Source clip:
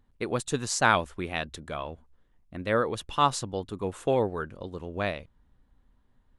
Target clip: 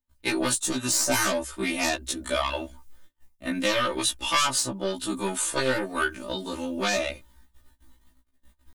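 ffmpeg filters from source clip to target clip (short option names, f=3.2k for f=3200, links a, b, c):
-filter_complex "[0:a]aeval=exprs='0.501*(cos(1*acos(clip(val(0)/0.501,-1,1)))-cos(1*PI/2))+0.0178*(cos(2*acos(clip(val(0)/0.501,-1,1)))-cos(2*PI/2))+0.178*(cos(3*acos(clip(val(0)/0.501,-1,1)))-cos(3*PI/2))+0.1*(cos(6*acos(clip(val(0)/0.501,-1,1)))-cos(6*PI/2))+0.178*(cos(7*acos(clip(val(0)/0.501,-1,1)))-cos(7*PI/2))':c=same,agate=range=-33dB:threshold=-52dB:ratio=16:detection=peak,crystalizer=i=6:c=0,acrossover=split=99|1500[a][b][c];[a]acompressor=threshold=-47dB:ratio=4[d];[b]acompressor=threshold=-23dB:ratio=4[e];[c]acompressor=threshold=-26dB:ratio=4[f];[d][e][f]amix=inputs=3:normalize=0,aecho=1:1:3.3:0.84,atempo=0.73,afftfilt=real='re*1.73*eq(mod(b,3),0)':imag='im*1.73*eq(mod(b,3),0)':win_size=2048:overlap=0.75"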